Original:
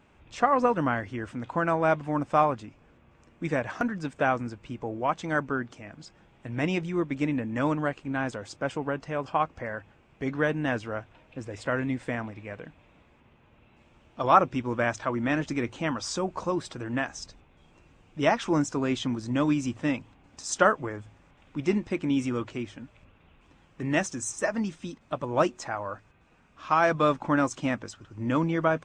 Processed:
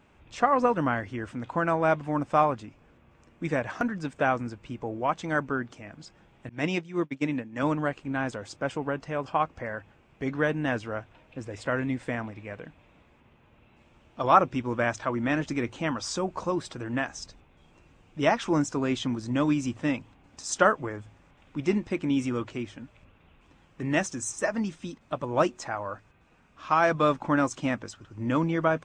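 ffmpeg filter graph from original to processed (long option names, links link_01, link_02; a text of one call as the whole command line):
ffmpeg -i in.wav -filter_complex "[0:a]asettb=1/sr,asplit=3[link_01][link_02][link_03];[link_01]atrim=end=6.494[link_04];[link_02]atrim=start=6.49:end=7.63,asetpts=PTS-STARTPTS,afade=type=in:duration=0.004:curve=qsin,afade=type=out:start_time=1.136:duration=0.004:curve=qsin,agate=range=-33dB:threshold=-26dB:ratio=3:release=100:detection=peak,highpass=110,lowpass=6200,highshelf=frequency=4600:gain=10[link_05];[link_03]atrim=start=7.626[link_06];[link_04][link_05]acrossfade=duration=0.004:curve1=hsin:curve2=qsin[link_07];[link_07][link_06]acrossfade=duration=0.004:curve1=qsin:curve2=hsin" out.wav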